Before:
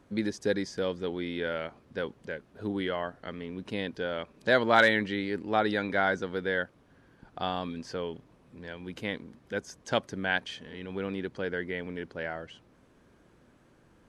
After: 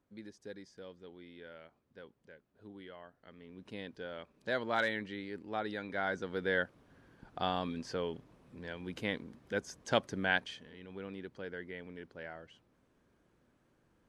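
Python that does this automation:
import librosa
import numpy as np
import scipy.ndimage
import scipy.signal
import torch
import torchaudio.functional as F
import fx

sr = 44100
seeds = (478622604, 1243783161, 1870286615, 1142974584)

y = fx.gain(x, sr, db=fx.line((3.16, -19.0), (3.67, -11.0), (5.85, -11.0), (6.55, -2.0), (10.33, -2.0), (10.76, -10.5)))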